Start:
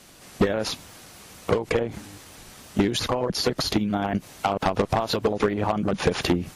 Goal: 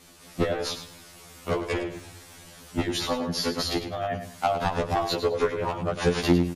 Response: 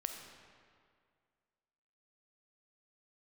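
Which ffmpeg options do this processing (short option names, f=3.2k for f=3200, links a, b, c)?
-af "aecho=1:1:103|206|309:0.316|0.0791|0.0198,afftfilt=real='re*2*eq(mod(b,4),0)':imag='im*2*eq(mod(b,4),0)':win_size=2048:overlap=0.75"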